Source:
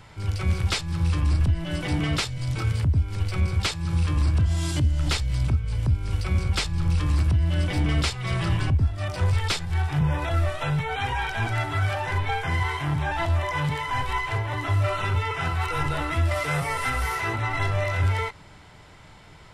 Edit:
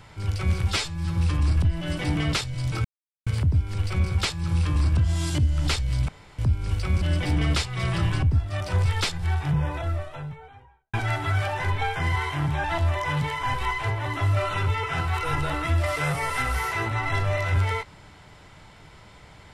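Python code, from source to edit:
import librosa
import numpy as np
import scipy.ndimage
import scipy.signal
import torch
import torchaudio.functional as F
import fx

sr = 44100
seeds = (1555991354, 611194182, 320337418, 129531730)

y = fx.studio_fade_out(x, sr, start_s=9.64, length_s=1.77)
y = fx.edit(y, sr, fx.stretch_span(start_s=0.68, length_s=0.33, factor=1.5),
    fx.insert_silence(at_s=2.68, length_s=0.42),
    fx.room_tone_fill(start_s=5.5, length_s=0.3),
    fx.cut(start_s=6.43, length_s=1.06), tone=tone)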